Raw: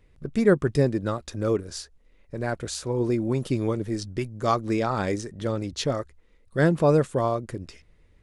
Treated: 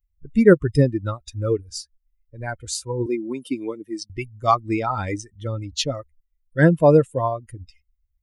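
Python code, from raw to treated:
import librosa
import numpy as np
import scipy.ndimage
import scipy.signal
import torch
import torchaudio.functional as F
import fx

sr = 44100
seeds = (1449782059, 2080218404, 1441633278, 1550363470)

y = fx.bin_expand(x, sr, power=2.0)
y = fx.highpass(y, sr, hz=240.0, slope=24, at=(3.06, 4.1))
y = F.gain(torch.from_numpy(y), 8.5).numpy()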